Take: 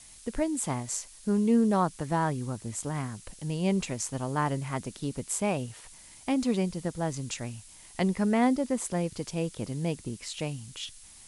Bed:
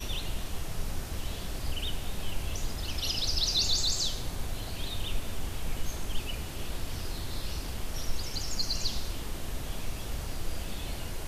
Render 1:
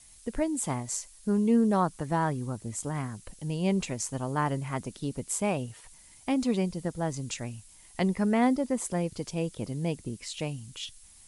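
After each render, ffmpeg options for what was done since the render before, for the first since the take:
ffmpeg -i in.wav -af "afftdn=noise_reduction=6:noise_floor=-52" out.wav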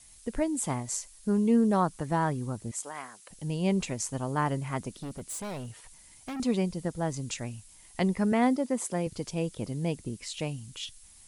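ffmpeg -i in.wav -filter_complex "[0:a]asettb=1/sr,asplit=3[link_01][link_02][link_03];[link_01]atrim=end=2.714[link_04];[link_02]atrim=start=2.71:end=3.31,asetpts=PTS-STARTPTS,afade=type=in:duration=0.004:curve=qsin,afade=type=out:start_time=0.596:duration=0.004:curve=qsin,highpass=620[link_05];[link_03]atrim=start=3.306[link_06];[link_04][link_05]acrossfade=duration=0.004:curve1=hsin:curve2=qsin[link_07];[link_07][link_06]acrossfade=duration=0.004:curve1=qsin:curve2=hsin,asettb=1/sr,asplit=3[link_08][link_09][link_10];[link_08]atrim=end=4.894[link_11];[link_09]atrim=start=4.89:end=6.4,asetpts=PTS-STARTPTS,afade=type=in:duration=0.004:curve=qsin,afade=type=out:start_time=1.506:duration=0.004:curve=qsin,volume=34.5dB,asoftclip=hard,volume=-34.5dB[link_12];[link_10]atrim=start=6.396[link_13];[link_11][link_12]acrossfade=duration=0.004:curve1=hsin:curve2=qsin[link_14];[link_14][link_13]acrossfade=duration=0.004:curve1=qsin:curve2=hsin,asettb=1/sr,asplit=3[link_15][link_16][link_17];[link_15]atrim=end=8.324[link_18];[link_16]atrim=start=8.32:end=9.07,asetpts=PTS-STARTPTS,afade=type=in:duration=0.004:curve=qsin,afade=type=out:start_time=0.746:duration=0.004:curve=qsin,highpass=160[link_19];[link_17]atrim=start=9.066[link_20];[link_18][link_19]acrossfade=duration=0.004:curve1=hsin:curve2=qsin[link_21];[link_21][link_20]acrossfade=duration=0.004:curve1=qsin:curve2=hsin" out.wav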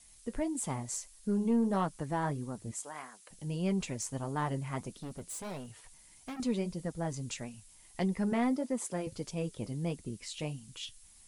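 ffmpeg -i in.wav -af "asoftclip=type=tanh:threshold=-18dB,flanger=delay=4.2:depth=4.6:regen=-57:speed=1.6:shape=sinusoidal" out.wav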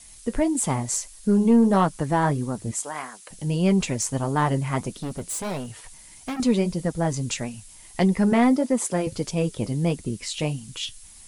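ffmpeg -i in.wav -af "volume=11.5dB" out.wav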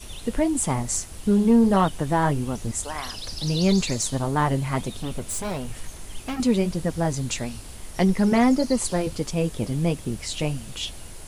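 ffmpeg -i in.wav -i bed.wav -filter_complex "[1:a]volume=-5dB[link_01];[0:a][link_01]amix=inputs=2:normalize=0" out.wav

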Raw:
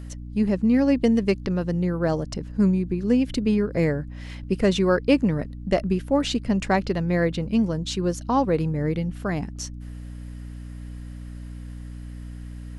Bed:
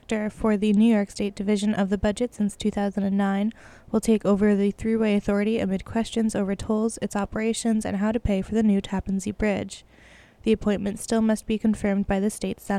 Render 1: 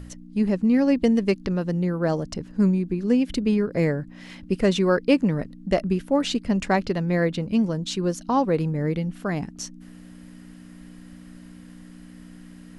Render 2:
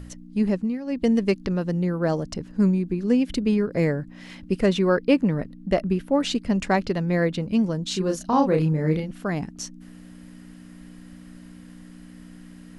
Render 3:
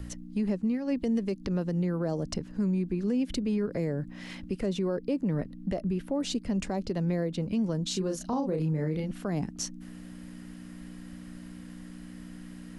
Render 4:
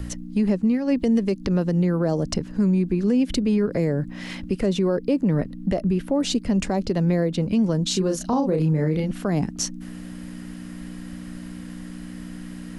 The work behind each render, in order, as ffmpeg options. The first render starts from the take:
ffmpeg -i in.wav -af "bandreject=frequency=60:width_type=h:width=4,bandreject=frequency=120:width_type=h:width=4" out.wav
ffmpeg -i in.wav -filter_complex "[0:a]asettb=1/sr,asplit=3[link_01][link_02][link_03];[link_01]atrim=end=4.664[link_04];[link_02]atrim=start=4.66:end=6.21,asetpts=PTS-STARTPTS,afade=type=in:duration=0.004:curve=qsin,afade=type=out:start_time=1.546:duration=0.004:curve=qsin,equalizer=frequency=7100:width_type=o:width=1.4:gain=-5.5[link_05];[link_03]atrim=start=6.206[link_06];[link_04][link_05]acrossfade=duration=0.004:curve1=hsin:curve2=qsin[link_07];[link_07][link_06]acrossfade=duration=0.004:curve1=qsin:curve2=hsin,asettb=1/sr,asplit=3[link_08][link_09][link_10];[link_08]atrim=end=7.884[link_11];[link_09]atrim=start=7.88:end=9.11,asetpts=PTS-STARTPTS,afade=type=in:duration=0.004:curve=qsin,afade=type=out:start_time=1.226:duration=0.004:curve=qsin,asplit=2[link_12][link_13];[link_13]adelay=32,volume=-3.5dB[link_14];[link_12][link_14]amix=inputs=2:normalize=0,atrim=end_sample=54243[link_15];[link_10]atrim=start=9.106[link_16];[link_11][link_15]acrossfade=duration=0.004:curve1=hsin:curve2=qsin[link_17];[link_17][link_16]acrossfade=duration=0.004:curve1=qsin:curve2=hsin,asplit=3[link_18][link_19][link_20];[link_18]atrim=end=0.79,asetpts=PTS-STARTPTS,afade=type=out:start_time=0.52:duration=0.27:silence=0.188365[link_21];[link_19]atrim=start=0.79:end=0.84,asetpts=PTS-STARTPTS,volume=-14.5dB[link_22];[link_20]atrim=start=0.84,asetpts=PTS-STARTPTS,afade=type=in:duration=0.27:silence=0.188365[link_23];[link_21][link_22][link_23]concat=n=3:v=0:a=1" out.wav
ffmpeg -i in.wav -filter_complex "[0:a]acrossover=split=230|810|4300[link_01][link_02][link_03][link_04];[link_03]acompressor=threshold=-40dB:ratio=6[link_05];[link_01][link_02][link_05][link_04]amix=inputs=4:normalize=0,alimiter=limit=-21.5dB:level=0:latency=1:release=180" out.wav
ffmpeg -i in.wav -af "volume=8dB" out.wav

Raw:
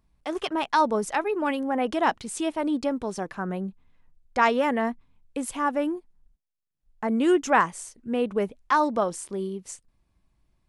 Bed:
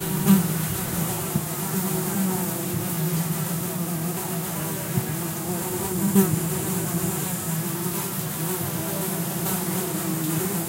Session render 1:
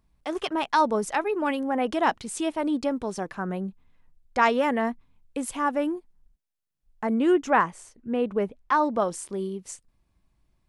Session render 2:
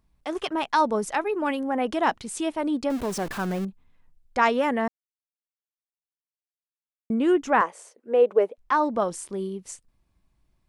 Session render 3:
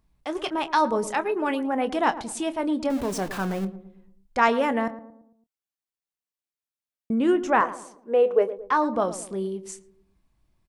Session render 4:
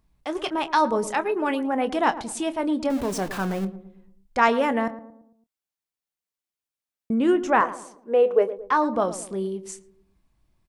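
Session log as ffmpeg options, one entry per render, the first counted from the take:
ffmpeg -i in.wav -filter_complex "[0:a]asettb=1/sr,asplit=3[link_01][link_02][link_03];[link_01]atrim=end=7.144[link_04];[link_02]atrim=start=7.14:end=9,asetpts=PTS-STARTPTS,afade=type=in:duration=0.004:curve=qsin,afade=type=out:start_time=1.856:duration=0.004:curve=qsin,highshelf=frequency=3900:gain=-10.5[link_05];[link_03]atrim=start=8.996[link_06];[link_04][link_05]acrossfade=duration=0.004:curve1=hsin:curve2=qsin[link_07];[link_07][link_06]acrossfade=duration=0.004:curve1=qsin:curve2=hsin" out.wav
ffmpeg -i in.wav -filter_complex "[0:a]asettb=1/sr,asplit=3[link_01][link_02][link_03];[link_01]atrim=end=2.904[link_04];[link_02]atrim=start=2.9:end=3.65,asetpts=PTS-STARTPTS,afade=type=in:duration=0.004:curve=qsin,afade=type=out:start_time=0.746:duration=0.004:curve=qsin,aeval=exprs='val(0)+0.5*0.0266*sgn(val(0))':channel_layout=same[link_05];[link_03]atrim=start=3.646[link_06];[link_04][link_05]acrossfade=duration=0.004:curve1=hsin:curve2=qsin[link_07];[link_07][link_06]acrossfade=duration=0.004:curve1=qsin:curve2=hsin,asettb=1/sr,asplit=3[link_08][link_09][link_10];[link_08]atrim=end=7.614[link_11];[link_09]atrim=start=7.61:end=8.58,asetpts=PTS-STARTPTS,afade=type=in:duration=0.004:curve=qsin,afade=type=out:start_time=0.966:duration=0.004:curve=qsin,highpass=frequency=490:width_type=q:width=2.9[link_12];[link_10]atrim=start=8.576[link_13];[link_11][link_12]acrossfade=duration=0.004:curve1=hsin:curve2=qsin[link_14];[link_14][link_13]acrossfade=duration=0.004:curve1=qsin:curve2=hsin,asplit=3[link_15][link_16][link_17];[link_15]atrim=end=4.88,asetpts=PTS-STARTPTS,afade=type=out:start_time=4.876:duration=0.004:curve=hsin[link_18];[link_16]atrim=start=4.88:end=7.1,asetpts=PTS-STARTPTS,volume=0[link_19];[link_17]atrim=start=7.1,asetpts=PTS-STARTPTS,afade=type=in:duration=0.004:curve=hsin[link_20];[link_18][link_19][link_20]concat=n=3:v=0:a=1" out.wav
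ffmpeg -i in.wav -filter_complex "[0:a]asplit=2[link_01][link_02];[link_02]adelay=26,volume=-13dB[link_03];[link_01][link_03]amix=inputs=2:normalize=0,asplit=2[link_04][link_05];[link_05]adelay=112,lowpass=frequency=840:poles=1,volume=-12dB,asplit=2[link_06][link_07];[link_07]adelay=112,lowpass=frequency=840:poles=1,volume=0.5,asplit=2[link_08][link_09];[link_09]adelay=112,lowpass=frequency=840:poles=1,volume=0.5,asplit=2[link_10][link_11];[link_11]adelay=112,lowpass=frequency=840:poles=1,volume=0.5,asplit=2[link_12][link_13];[link_13]adelay=112,lowpass=frequency=840:poles=1,volume=0.5[link_14];[link_04][link_06][link_08][link_10][link_12][link_14]amix=inputs=6:normalize=0" out.wav
ffmpeg -i in.wav -af "volume=1dB" out.wav

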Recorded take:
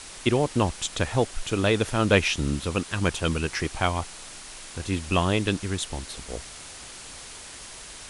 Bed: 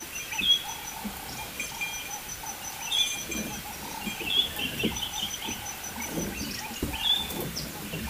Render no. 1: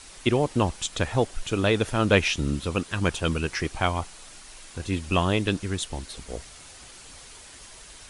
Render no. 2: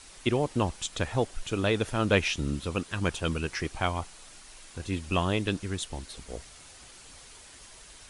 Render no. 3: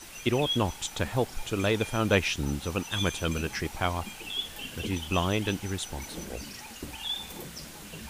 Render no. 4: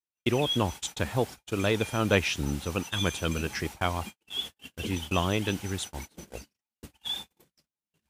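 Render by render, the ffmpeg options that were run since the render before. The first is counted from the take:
ffmpeg -i in.wav -af "afftdn=noise_reduction=6:noise_floor=-42" out.wav
ffmpeg -i in.wav -af "volume=-4dB" out.wav
ffmpeg -i in.wav -i bed.wav -filter_complex "[1:a]volume=-8.5dB[link_01];[0:a][link_01]amix=inputs=2:normalize=0" out.wav
ffmpeg -i in.wav -af "highpass=frequency=50:width=0.5412,highpass=frequency=50:width=1.3066,agate=range=-56dB:threshold=-36dB:ratio=16:detection=peak" out.wav

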